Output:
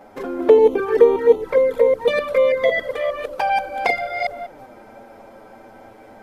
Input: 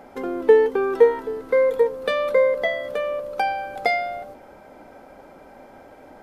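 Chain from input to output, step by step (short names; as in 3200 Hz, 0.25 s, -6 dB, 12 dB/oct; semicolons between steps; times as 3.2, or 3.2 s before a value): reverse delay 0.194 s, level -1 dB; envelope flanger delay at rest 10.7 ms, full sweep at -13 dBFS; gain +3 dB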